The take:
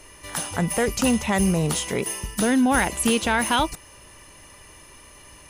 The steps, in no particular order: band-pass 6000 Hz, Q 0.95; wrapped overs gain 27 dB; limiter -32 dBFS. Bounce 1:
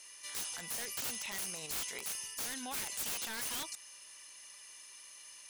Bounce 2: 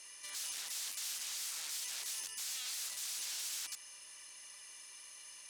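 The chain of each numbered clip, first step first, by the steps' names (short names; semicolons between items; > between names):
band-pass > wrapped overs > limiter; wrapped overs > band-pass > limiter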